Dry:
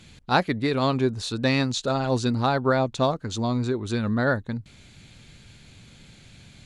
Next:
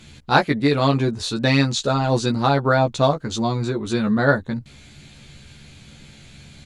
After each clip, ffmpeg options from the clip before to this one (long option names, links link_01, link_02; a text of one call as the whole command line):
ffmpeg -i in.wav -filter_complex "[0:a]asplit=2[link_01][link_02];[link_02]adelay=14,volume=-3dB[link_03];[link_01][link_03]amix=inputs=2:normalize=0,volume=3dB" out.wav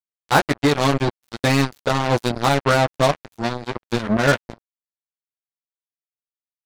ffmpeg -i in.wav -filter_complex "[0:a]acrossover=split=2800[link_01][link_02];[link_02]alimiter=limit=-22dB:level=0:latency=1:release=97[link_03];[link_01][link_03]amix=inputs=2:normalize=0,acrusher=bits=2:mix=0:aa=0.5" out.wav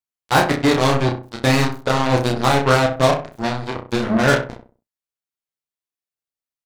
ffmpeg -i in.wav -filter_complex "[0:a]asplit=2[link_01][link_02];[link_02]adelay=31,volume=-4dB[link_03];[link_01][link_03]amix=inputs=2:normalize=0,asplit=2[link_04][link_05];[link_05]adelay=64,lowpass=frequency=1300:poles=1,volume=-7dB,asplit=2[link_06][link_07];[link_07]adelay=64,lowpass=frequency=1300:poles=1,volume=0.34,asplit=2[link_08][link_09];[link_09]adelay=64,lowpass=frequency=1300:poles=1,volume=0.34,asplit=2[link_10][link_11];[link_11]adelay=64,lowpass=frequency=1300:poles=1,volume=0.34[link_12];[link_06][link_08][link_10][link_12]amix=inputs=4:normalize=0[link_13];[link_04][link_13]amix=inputs=2:normalize=0" out.wav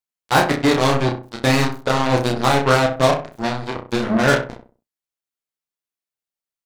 ffmpeg -i in.wav -af "equalizer=frequency=79:width=1.4:gain=-4.5" out.wav